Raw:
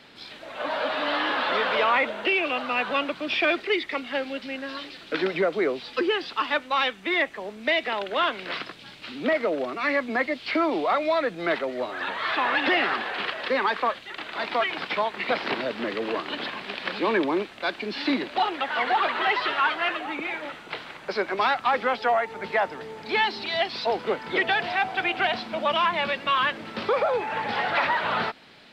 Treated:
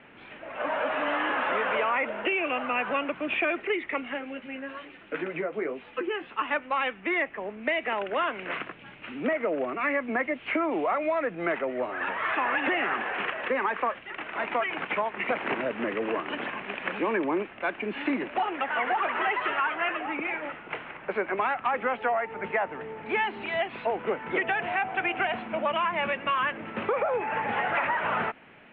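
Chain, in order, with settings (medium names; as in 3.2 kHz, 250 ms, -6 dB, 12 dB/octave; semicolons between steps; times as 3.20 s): steep low-pass 2.8 kHz 48 dB/octave; compression, threshold -23 dBFS, peak gain reduction 5.5 dB; 4.14–6.39 s: flange 1.1 Hz, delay 9.6 ms, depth 5.2 ms, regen -34%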